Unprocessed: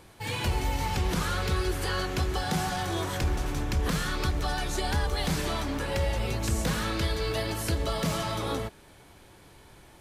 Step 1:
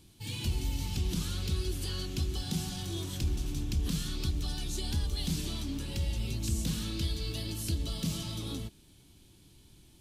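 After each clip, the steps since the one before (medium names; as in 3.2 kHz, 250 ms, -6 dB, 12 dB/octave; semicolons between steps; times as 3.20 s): high-order bell 970 Hz -15.5 dB 2.6 oct; trim -3 dB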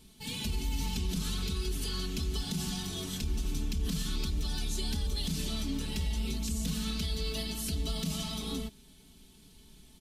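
comb 4.6 ms, depth 93%; peak limiter -24 dBFS, peak gain reduction 6.5 dB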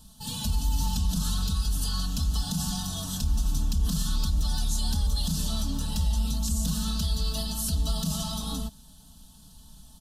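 static phaser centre 910 Hz, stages 4; trim +7.5 dB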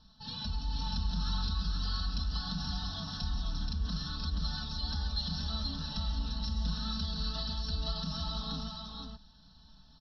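rippled Chebyshev low-pass 5.6 kHz, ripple 9 dB; on a send: delay 478 ms -4 dB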